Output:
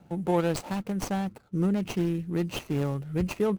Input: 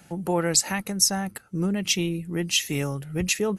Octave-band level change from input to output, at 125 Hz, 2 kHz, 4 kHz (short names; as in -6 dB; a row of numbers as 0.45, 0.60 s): 0.0, -9.5, -15.5 dB